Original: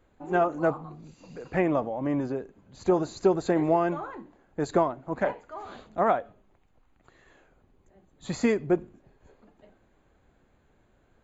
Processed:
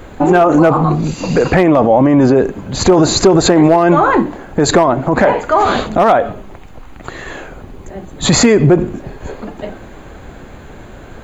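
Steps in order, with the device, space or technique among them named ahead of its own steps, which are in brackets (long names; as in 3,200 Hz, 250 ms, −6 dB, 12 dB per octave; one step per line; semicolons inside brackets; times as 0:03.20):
loud club master (downward compressor 1.5 to 1, threshold −30 dBFS, peak gain reduction 5 dB; hard clipping −19.5 dBFS, distortion −22 dB; boost into a limiter +31.5 dB)
level −1 dB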